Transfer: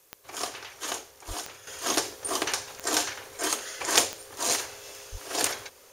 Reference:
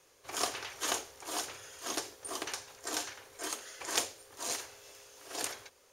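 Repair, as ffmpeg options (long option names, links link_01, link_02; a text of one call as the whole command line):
ffmpeg -i in.wav -filter_complex "[0:a]adeclick=threshold=4,asplit=3[link_01][link_02][link_03];[link_01]afade=type=out:start_time=1.27:duration=0.02[link_04];[link_02]highpass=frequency=140:width=0.5412,highpass=frequency=140:width=1.3066,afade=type=in:start_time=1.27:duration=0.02,afade=type=out:start_time=1.39:duration=0.02[link_05];[link_03]afade=type=in:start_time=1.39:duration=0.02[link_06];[link_04][link_05][link_06]amix=inputs=3:normalize=0,asplit=3[link_07][link_08][link_09];[link_07]afade=type=out:start_time=5.11:duration=0.02[link_10];[link_08]highpass=frequency=140:width=0.5412,highpass=frequency=140:width=1.3066,afade=type=in:start_time=5.11:duration=0.02,afade=type=out:start_time=5.23:duration=0.02[link_11];[link_09]afade=type=in:start_time=5.23:duration=0.02[link_12];[link_10][link_11][link_12]amix=inputs=3:normalize=0,agate=range=-21dB:threshold=-44dB,asetnsamples=nb_out_samples=441:pad=0,asendcmd='1.67 volume volume -10dB',volume=0dB" out.wav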